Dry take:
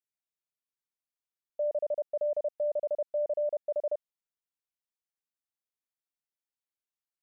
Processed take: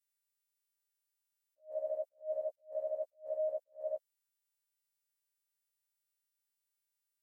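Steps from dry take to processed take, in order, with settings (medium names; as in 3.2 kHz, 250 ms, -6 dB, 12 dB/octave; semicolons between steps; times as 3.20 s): partials quantised in pitch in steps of 2 st; attacks held to a fixed rise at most 250 dB/s; trim -4 dB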